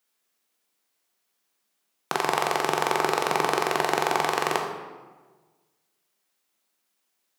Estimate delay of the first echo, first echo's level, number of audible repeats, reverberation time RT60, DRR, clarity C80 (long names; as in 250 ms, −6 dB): no echo audible, no echo audible, no echo audible, 1.4 s, 1.5 dB, 6.0 dB